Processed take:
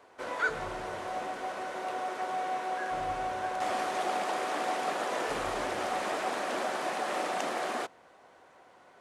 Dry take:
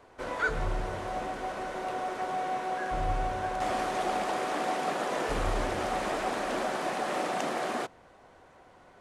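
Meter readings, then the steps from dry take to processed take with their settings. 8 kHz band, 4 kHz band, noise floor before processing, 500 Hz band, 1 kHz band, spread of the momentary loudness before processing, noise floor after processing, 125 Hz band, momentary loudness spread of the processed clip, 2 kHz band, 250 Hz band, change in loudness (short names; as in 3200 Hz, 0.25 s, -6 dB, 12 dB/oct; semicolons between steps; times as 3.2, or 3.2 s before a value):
0.0 dB, 0.0 dB, -57 dBFS, -2.0 dB, -1.0 dB, 5 LU, -58 dBFS, -11.5 dB, 5 LU, 0.0 dB, -4.5 dB, -1.5 dB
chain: HPF 370 Hz 6 dB/oct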